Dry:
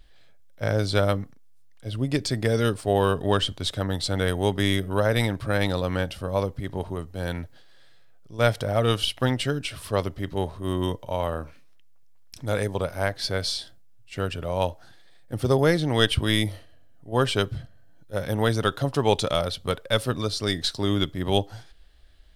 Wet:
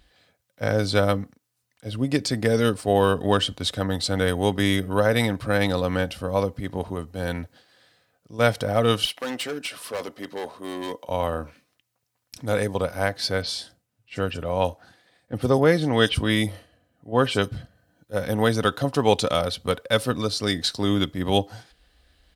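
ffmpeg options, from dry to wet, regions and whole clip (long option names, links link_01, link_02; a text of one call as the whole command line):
ffmpeg -i in.wav -filter_complex "[0:a]asettb=1/sr,asplit=3[link_01][link_02][link_03];[link_01]atrim=end=9.054[link_04];[link_02]atrim=start=9.05:end=11.09,asetpts=PTS-STARTPTS,afade=type=in:duration=0.004:curve=qsin,afade=type=out:start_time=2.036:duration=0.004:curve=qsin,highpass=330,volume=27.5dB,asoftclip=hard,volume=-27.5dB[link_05];[link_03]atrim=start=11.086[link_06];[link_04][link_05]acrossfade=duration=0.004:curve1=hsin:curve2=qsin[link_07];[link_07][link_06]acrossfade=duration=0.004:curve1=qsin:curve2=hsin,asettb=1/sr,asplit=3[link_08][link_09][link_10];[link_08]atrim=end=13.424[link_11];[link_09]atrim=start=13.42:end=17.52,asetpts=PTS-STARTPTS,afade=type=in:duration=0.004:curve=qsin,afade=type=out:start_time=4.096:duration=0.004:curve=qsin,highshelf=frequency=9000:gain=-6.5,acrossover=split=4900[link_12][link_13];[link_13]adelay=30[link_14];[link_12][link_14]amix=inputs=2:normalize=0,atrim=end_sample=180810[link_15];[link_10]atrim=start=17.516[link_16];[link_11][link_15]acrossfade=duration=0.004:curve1=hsin:curve2=qsin[link_17];[link_17][link_16]acrossfade=duration=0.004:curve1=qsin:curve2=hsin,highpass=66,bandreject=frequency=3400:width=23,aecho=1:1:4:0.3,volume=2dB" out.wav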